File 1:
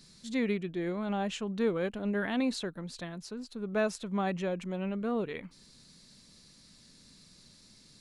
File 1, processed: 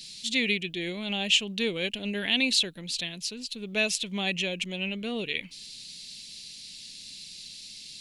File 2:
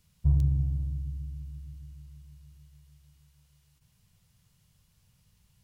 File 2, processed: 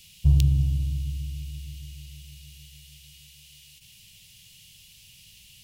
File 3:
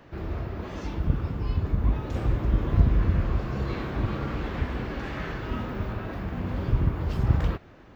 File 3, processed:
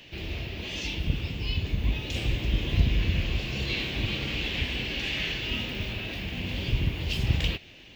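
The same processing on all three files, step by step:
high shelf with overshoot 1,900 Hz +13.5 dB, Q 3
normalise the peak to −9 dBFS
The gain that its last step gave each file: −0.5, +5.0, −3.0 decibels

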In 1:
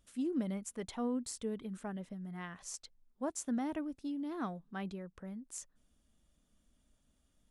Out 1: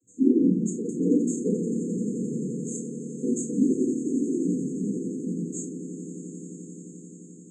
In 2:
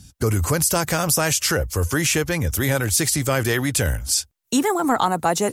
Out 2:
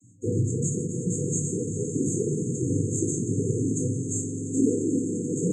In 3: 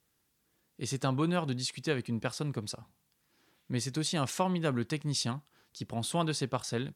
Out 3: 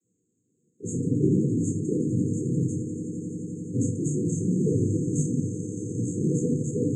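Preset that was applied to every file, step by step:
cochlear-implant simulation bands 16
echo that builds up and dies away 87 ms, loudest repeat 8, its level −16 dB
brick-wall band-stop 510–6,300 Hz
rectangular room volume 410 cubic metres, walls furnished, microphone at 3.3 metres
loudness normalisation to −27 LKFS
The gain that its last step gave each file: +6.5, −9.5, +1.5 decibels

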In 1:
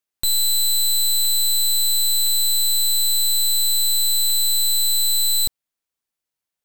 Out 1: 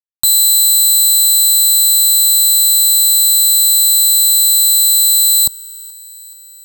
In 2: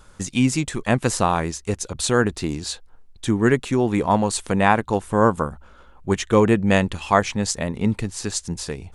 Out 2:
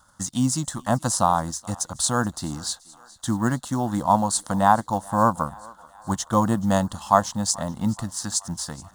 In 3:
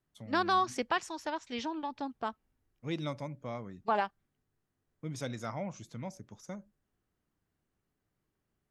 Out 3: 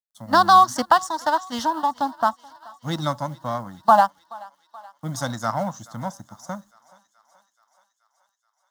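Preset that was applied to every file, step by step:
mu-law and A-law mismatch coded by A
high-pass filter 210 Hz 6 dB per octave
dynamic equaliser 1,900 Hz, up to −8 dB, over −39 dBFS, Q 1.2
phaser with its sweep stopped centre 1,000 Hz, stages 4
feedback echo with a high-pass in the loop 428 ms, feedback 69%, high-pass 530 Hz, level −22 dB
normalise the peak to −1.5 dBFS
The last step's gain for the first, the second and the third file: +12.5, +4.5, +19.5 decibels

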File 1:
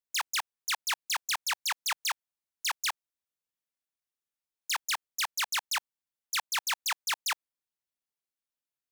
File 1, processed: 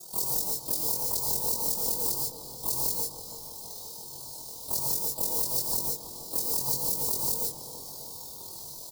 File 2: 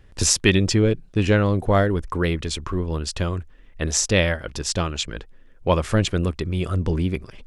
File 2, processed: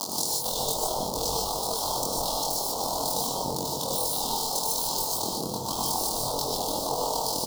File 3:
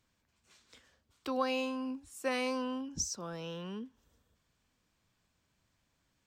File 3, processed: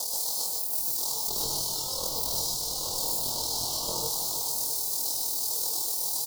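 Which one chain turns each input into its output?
converter with a step at zero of −20.5 dBFS
gate on every frequency bin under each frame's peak −20 dB weak
Chebyshev band-stop filter 940–4,300 Hz, order 3
parametric band 2,400 Hz +4.5 dB 0.84 octaves
downward compressor 12 to 1, threshold −42 dBFS
ring modulation 20 Hz
double-tracking delay 22 ms −2 dB
feedback echo with a low-pass in the loop 330 ms, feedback 65%, low-pass 2,000 Hz, level −9.5 dB
reverb whose tail is shaped and stops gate 170 ms rising, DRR −0.5 dB
loudness normalisation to −27 LKFS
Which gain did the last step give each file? +17.5, +15.5, +14.5 decibels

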